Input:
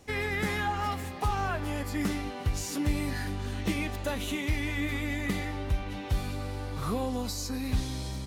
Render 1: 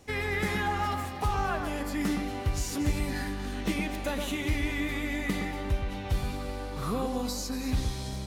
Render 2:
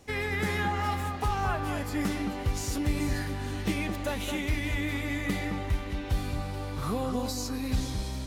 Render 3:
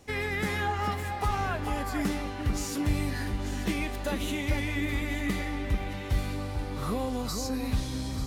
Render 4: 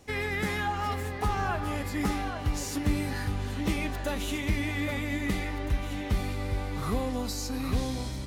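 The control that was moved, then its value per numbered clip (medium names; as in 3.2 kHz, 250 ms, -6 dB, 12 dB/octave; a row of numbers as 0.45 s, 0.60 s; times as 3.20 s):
echo whose repeats swap between lows and highs, time: 117 ms, 217 ms, 445 ms, 813 ms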